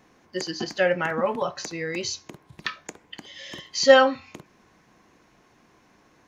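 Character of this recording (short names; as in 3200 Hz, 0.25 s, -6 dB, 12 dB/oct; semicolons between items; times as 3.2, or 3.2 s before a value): noise floor -60 dBFS; spectral tilt -3.0 dB/oct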